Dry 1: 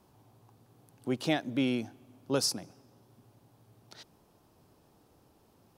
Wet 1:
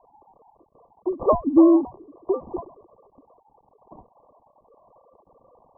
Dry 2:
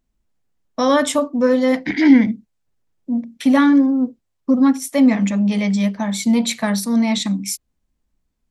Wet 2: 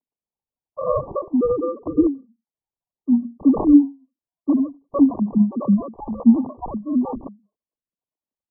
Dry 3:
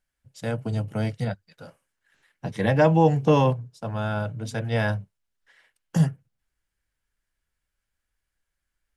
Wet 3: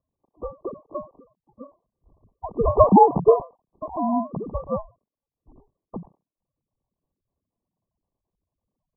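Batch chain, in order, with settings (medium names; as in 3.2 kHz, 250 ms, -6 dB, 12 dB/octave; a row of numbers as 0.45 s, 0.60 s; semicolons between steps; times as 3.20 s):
formants replaced by sine waves; dynamic bell 510 Hz, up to -4 dB, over -30 dBFS, Q 2.1; sample-and-hold 26×; brick-wall FIR low-pass 1.2 kHz; endings held to a fixed fall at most 210 dB/s; normalise loudness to -20 LUFS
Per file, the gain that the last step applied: +15.5 dB, +2.0 dB, +7.0 dB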